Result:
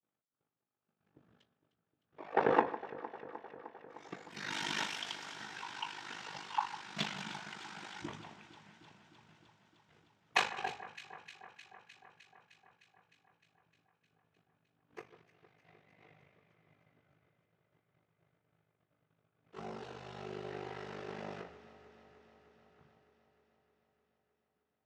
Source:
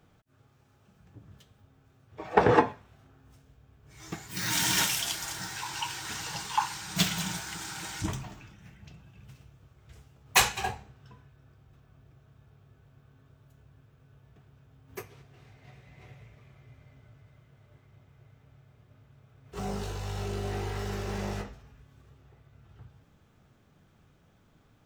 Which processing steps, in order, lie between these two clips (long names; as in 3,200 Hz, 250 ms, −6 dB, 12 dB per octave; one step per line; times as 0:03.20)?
downward expander −51 dBFS
ring modulation 25 Hz
band-pass filter 240–3,500 Hz
on a send: delay that swaps between a low-pass and a high-pass 153 ms, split 1,800 Hz, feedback 85%, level −14 dB
on the sum: level −4 dB